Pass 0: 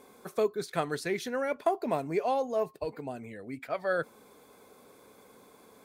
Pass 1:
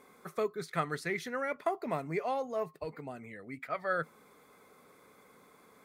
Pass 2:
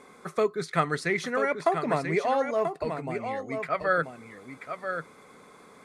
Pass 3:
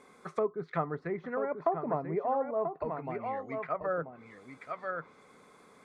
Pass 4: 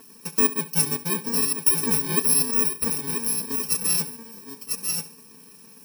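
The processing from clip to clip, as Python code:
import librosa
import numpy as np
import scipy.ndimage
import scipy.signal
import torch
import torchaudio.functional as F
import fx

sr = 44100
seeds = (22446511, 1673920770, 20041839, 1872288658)

y1 = fx.graphic_eq_31(x, sr, hz=(160, 1250, 2000), db=(7, 9, 10))
y1 = F.gain(torch.from_numpy(y1), -5.5).numpy()
y2 = scipy.signal.sosfilt(scipy.signal.butter(4, 10000.0, 'lowpass', fs=sr, output='sos'), y1)
y2 = y2 + 10.0 ** (-7.5 / 20.0) * np.pad(y2, (int(986 * sr / 1000.0), 0))[:len(y2)]
y2 = F.gain(torch.from_numpy(y2), 7.5).numpy()
y3 = fx.env_lowpass_down(y2, sr, base_hz=840.0, full_db=-25.0)
y3 = fx.dynamic_eq(y3, sr, hz=970.0, q=1.4, threshold_db=-43.0, ratio=4.0, max_db=6)
y3 = F.gain(torch.from_numpy(y3), -6.0).numpy()
y4 = fx.bit_reversed(y3, sr, seeds[0], block=64)
y4 = y4 + 0.87 * np.pad(y4, (int(4.5 * sr / 1000.0), 0))[:len(y4)]
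y4 = fx.echo_feedback(y4, sr, ms=69, feedback_pct=40, wet_db=-16.5)
y4 = F.gain(torch.from_numpy(y4), 7.0).numpy()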